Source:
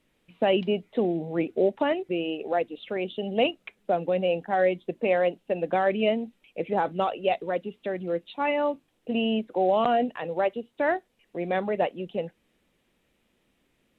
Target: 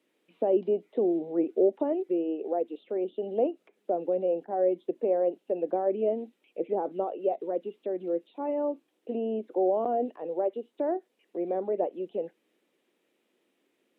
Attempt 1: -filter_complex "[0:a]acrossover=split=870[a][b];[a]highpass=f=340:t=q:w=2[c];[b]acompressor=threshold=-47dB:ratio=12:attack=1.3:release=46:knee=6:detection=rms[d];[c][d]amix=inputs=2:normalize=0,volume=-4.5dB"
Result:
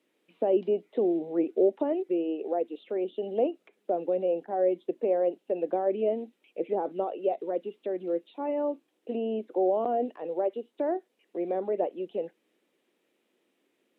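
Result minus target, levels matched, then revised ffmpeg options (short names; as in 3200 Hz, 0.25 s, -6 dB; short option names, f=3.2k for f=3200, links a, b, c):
compressor: peak gain reduction -6.5 dB
-filter_complex "[0:a]acrossover=split=870[a][b];[a]highpass=f=340:t=q:w=2[c];[b]acompressor=threshold=-54dB:ratio=12:attack=1.3:release=46:knee=6:detection=rms[d];[c][d]amix=inputs=2:normalize=0,volume=-4.5dB"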